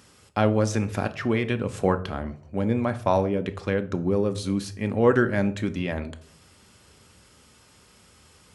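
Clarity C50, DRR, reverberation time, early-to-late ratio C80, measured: 16.5 dB, 9.0 dB, 0.60 s, 20.5 dB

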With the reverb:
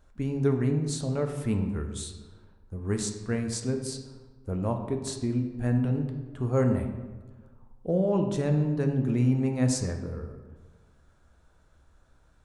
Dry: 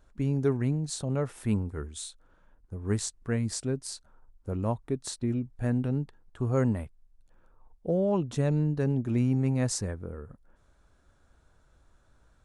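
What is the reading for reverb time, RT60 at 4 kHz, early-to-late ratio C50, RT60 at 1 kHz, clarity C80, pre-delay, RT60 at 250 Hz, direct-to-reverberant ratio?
1.4 s, 0.80 s, 7.0 dB, 1.3 s, 9.0 dB, 5 ms, 1.5 s, 4.0 dB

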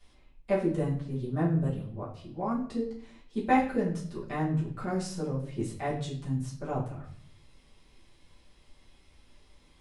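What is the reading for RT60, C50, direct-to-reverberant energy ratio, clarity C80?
0.55 s, 6.5 dB, -7.5 dB, 11.0 dB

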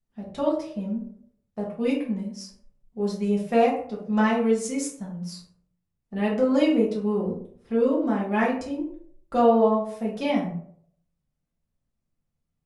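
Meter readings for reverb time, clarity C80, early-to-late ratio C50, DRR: 0.60 s, 9.5 dB, 5.0 dB, -5.0 dB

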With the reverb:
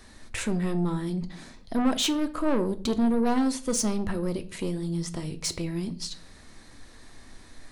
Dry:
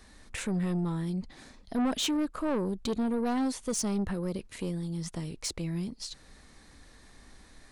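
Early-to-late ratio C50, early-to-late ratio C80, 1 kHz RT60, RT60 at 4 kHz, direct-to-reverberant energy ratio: 17.0 dB, 21.5 dB, 0.45 s, 0.40 s, 9.5 dB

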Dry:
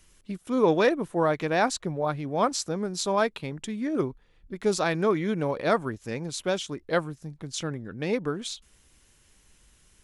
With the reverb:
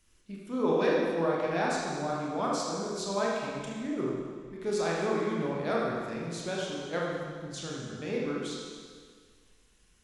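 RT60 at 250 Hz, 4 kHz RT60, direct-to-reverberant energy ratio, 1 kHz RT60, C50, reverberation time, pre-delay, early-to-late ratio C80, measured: 1.8 s, 1.8 s, -4.5 dB, 1.8 s, -1.0 dB, 1.8 s, 24 ms, 1.0 dB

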